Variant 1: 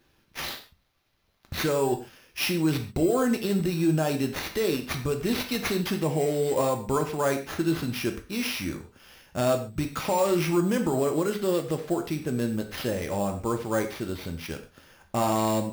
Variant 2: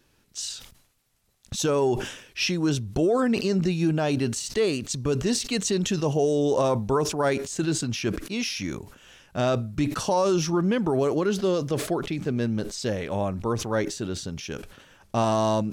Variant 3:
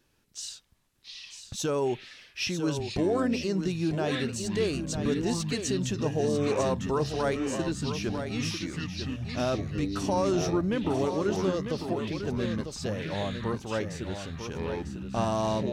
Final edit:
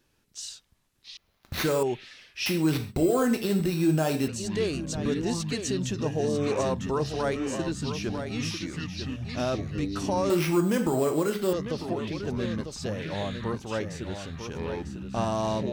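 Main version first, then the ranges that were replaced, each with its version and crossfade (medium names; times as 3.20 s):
3
1.17–1.83 s: from 1
2.46–4.28 s: from 1
10.30–11.53 s: from 1
not used: 2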